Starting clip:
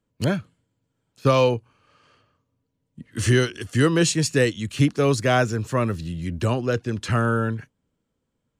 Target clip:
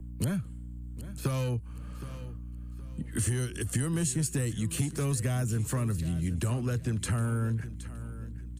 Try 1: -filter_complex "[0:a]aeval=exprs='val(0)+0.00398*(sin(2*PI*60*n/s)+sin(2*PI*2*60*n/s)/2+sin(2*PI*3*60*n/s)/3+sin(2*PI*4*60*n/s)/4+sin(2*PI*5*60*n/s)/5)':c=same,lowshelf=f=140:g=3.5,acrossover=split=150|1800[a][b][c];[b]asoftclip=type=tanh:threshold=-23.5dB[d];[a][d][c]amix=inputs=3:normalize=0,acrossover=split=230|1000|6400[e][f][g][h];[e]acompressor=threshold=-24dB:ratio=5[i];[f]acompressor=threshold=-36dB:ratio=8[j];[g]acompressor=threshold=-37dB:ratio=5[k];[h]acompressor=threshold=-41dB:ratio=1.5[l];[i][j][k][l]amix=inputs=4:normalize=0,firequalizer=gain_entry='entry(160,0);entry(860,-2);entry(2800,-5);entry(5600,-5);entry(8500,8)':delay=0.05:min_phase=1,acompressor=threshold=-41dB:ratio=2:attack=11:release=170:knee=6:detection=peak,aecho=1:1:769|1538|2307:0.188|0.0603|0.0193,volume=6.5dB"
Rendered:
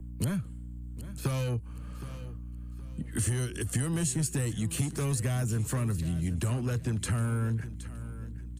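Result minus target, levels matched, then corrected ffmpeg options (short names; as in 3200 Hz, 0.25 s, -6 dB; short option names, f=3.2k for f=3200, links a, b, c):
soft clip: distortion +7 dB
-filter_complex "[0:a]aeval=exprs='val(0)+0.00398*(sin(2*PI*60*n/s)+sin(2*PI*2*60*n/s)/2+sin(2*PI*3*60*n/s)/3+sin(2*PI*4*60*n/s)/4+sin(2*PI*5*60*n/s)/5)':c=same,lowshelf=f=140:g=3.5,acrossover=split=150|1800[a][b][c];[b]asoftclip=type=tanh:threshold=-16dB[d];[a][d][c]amix=inputs=3:normalize=0,acrossover=split=230|1000|6400[e][f][g][h];[e]acompressor=threshold=-24dB:ratio=5[i];[f]acompressor=threshold=-36dB:ratio=8[j];[g]acompressor=threshold=-37dB:ratio=5[k];[h]acompressor=threshold=-41dB:ratio=1.5[l];[i][j][k][l]amix=inputs=4:normalize=0,firequalizer=gain_entry='entry(160,0);entry(860,-2);entry(2800,-5);entry(5600,-5);entry(8500,8)':delay=0.05:min_phase=1,acompressor=threshold=-41dB:ratio=2:attack=11:release=170:knee=6:detection=peak,aecho=1:1:769|1538|2307:0.188|0.0603|0.0193,volume=6.5dB"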